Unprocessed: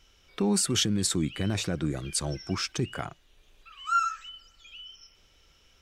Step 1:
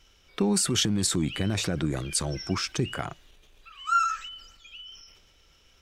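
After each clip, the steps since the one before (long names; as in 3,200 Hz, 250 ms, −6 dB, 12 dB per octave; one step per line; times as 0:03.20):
transient designer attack +3 dB, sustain +7 dB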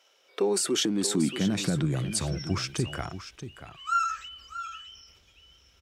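high-pass filter sweep 590 Hz → 61 Hz, 0:00.07–0:02.71
single-tap delay 633 ms −11.5 dB
level −2.5 dB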